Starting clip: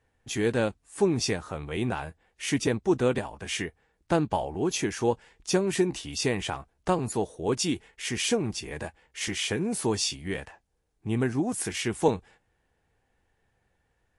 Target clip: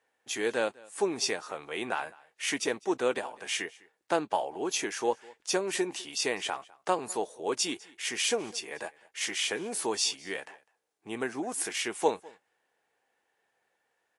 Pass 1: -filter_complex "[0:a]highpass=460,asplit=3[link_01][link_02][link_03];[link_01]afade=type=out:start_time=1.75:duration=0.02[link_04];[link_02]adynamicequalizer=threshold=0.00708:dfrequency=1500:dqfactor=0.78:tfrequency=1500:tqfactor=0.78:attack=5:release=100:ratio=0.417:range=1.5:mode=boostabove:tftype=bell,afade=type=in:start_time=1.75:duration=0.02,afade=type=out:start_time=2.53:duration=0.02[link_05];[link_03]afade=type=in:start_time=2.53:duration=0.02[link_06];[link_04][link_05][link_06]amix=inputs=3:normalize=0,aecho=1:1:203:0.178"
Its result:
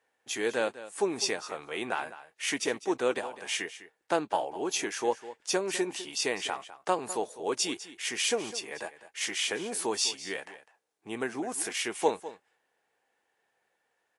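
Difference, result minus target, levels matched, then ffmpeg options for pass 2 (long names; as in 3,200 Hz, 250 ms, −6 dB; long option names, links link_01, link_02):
echo-to-direct +8.5 dB
-filter_complex "[0:a]highpass=460,asplit=3[link_01][link_02][link_03];[link_01]afade=type=out:start_time=1.75:duration=0.02[link_04];[link_02]adynamicequalizer=threshold=0.00708:dfrequency=1500:dqfactor=0.78:tfrequency=1500:tqfactor=0.78:attack=5:release=100:ratio=0.417:range=1.5:mode=boostabove:tftype=bell,afade=type=in:start_time=1.75:duration=0.02,afade=type=out:start_time=2.53:duration=0.02[link_05];[link_03]afade=type=in:start_time=2.53:duration=0.02[link_06];[link_04][link_05][link_06]amix=inputs=3:normalize=0,aecho=1:1:203:0.0668"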